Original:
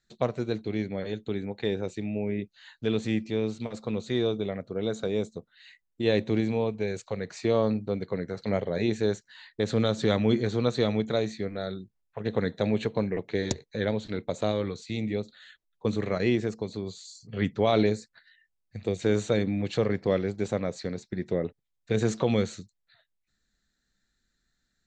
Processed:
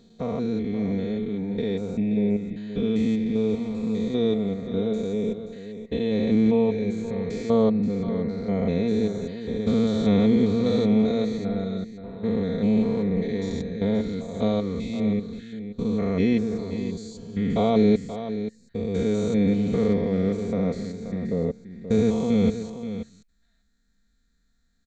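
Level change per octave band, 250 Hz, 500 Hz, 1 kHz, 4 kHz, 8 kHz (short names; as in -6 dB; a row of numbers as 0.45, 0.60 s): +7.5 dB, +2.5 dB, +0.5 dB, -2.0 dB, n/a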